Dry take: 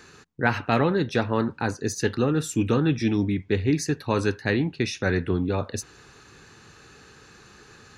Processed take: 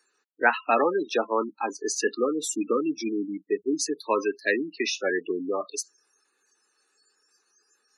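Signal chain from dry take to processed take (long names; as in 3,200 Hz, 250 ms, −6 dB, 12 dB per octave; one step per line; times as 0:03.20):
noise reduction from a noise print of the clip's start 24 dB
gate on every frequency bin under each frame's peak −20 dB strong
Bessel high-pass filter 460 Hz, order 8
level +4 dB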